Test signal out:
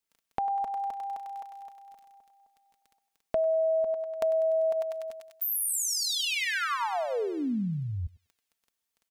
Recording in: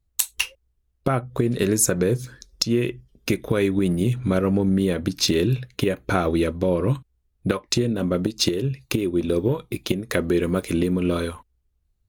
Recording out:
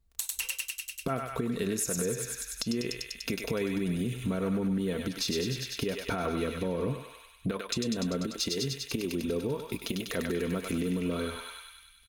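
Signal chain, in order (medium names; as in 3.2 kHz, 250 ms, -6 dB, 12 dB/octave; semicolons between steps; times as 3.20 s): on a send: thinning echo 98 ms, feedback 72%, high-pass 1.1 kHz, level -3.5 dB; on the sum: peak limiter -12.5 dBFS; crackle 11 per s -46 dBFS; comb 4.4 ms, depth 43%; compression 2:1, threshold -35 dBFS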